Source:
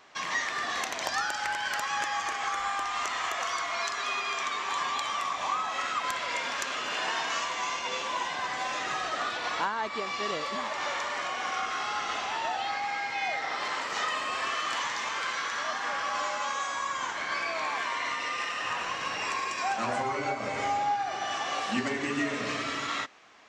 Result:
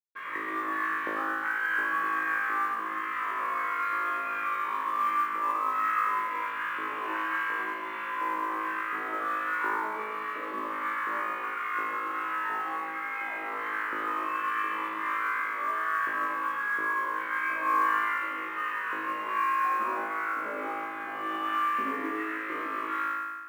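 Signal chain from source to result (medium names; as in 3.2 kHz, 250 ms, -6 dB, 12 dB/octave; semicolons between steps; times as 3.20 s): peaking EQ 490 Hz -10 dB 1.1 oct; LFO high-pass square 1.4 Hz 350–1500 Hz; word length cut 6-bit, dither none; cabinet simulation 220–2000 Hz, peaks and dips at 310 Hz +7 dB, 520 Hz +6 dB, 740 Hz -10 dB, 1.1 kHz +6 dB, 1.8 kHz -3 dB; flutter echo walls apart 3.2 m, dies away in 1.2 s; on a send at -7.5 dB: reverberation RT60 0.55 s, pre-delay 102 ms; on the sum: modulation noise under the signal 30 dB; trim -7.5 dB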